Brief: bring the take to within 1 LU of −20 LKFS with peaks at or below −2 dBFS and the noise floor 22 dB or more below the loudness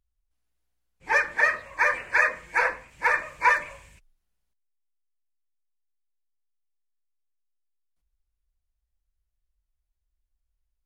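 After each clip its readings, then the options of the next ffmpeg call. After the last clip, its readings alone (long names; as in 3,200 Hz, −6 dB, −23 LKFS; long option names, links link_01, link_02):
integrated loudness −23.5 LKFS; sample peak −8.0 dBFS; target loudness −20.0 LKFS
→ -af "volume=3.5dB"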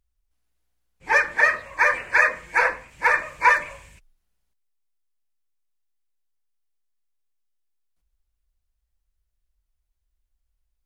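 integrated loudness −20.0 LKFS; sample peak −4.5 dBFS; background noise floor −76 dBFS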